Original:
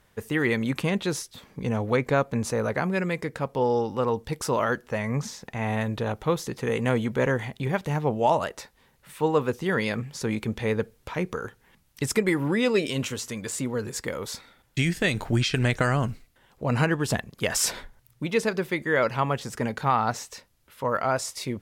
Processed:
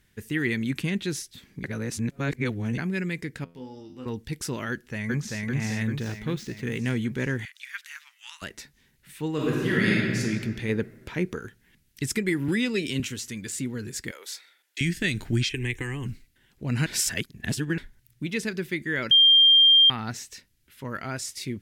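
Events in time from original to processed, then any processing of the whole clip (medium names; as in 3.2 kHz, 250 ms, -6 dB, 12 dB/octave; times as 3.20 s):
1.64–2.78 s: reverse
3.44–4.06 s: feedback comb 85 Hz, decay 0.43 s, mix 90%
4.70–5.43 s: echo throw 390 ms, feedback 60%, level -0.5 dB
5.98–6.78 s: median filter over 5 samples
7.45–8.42 s: steep high-pass 1.2 kHz 48 dB/octave
9.33–10.19 s: reverb throw, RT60 1.9 s, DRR -5.5 dB
10.69–11.39 s: peaking EQ 560 Hz +7 dB 2.5 oct
12.48–13.00 s: three bands compressed up and down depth 70%
14.11–14.81 s: high-pass 500 Hz 24 dB/octave
15.49–16.06 s: static phaser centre 950 Hz, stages 8
16.86–17.78 s: reverse
19.11–19.90 s: bleep 3.19 kHz -11.5 dBFS
whole clip: high-order bell 770 Hz -13 dB; trim -1 dB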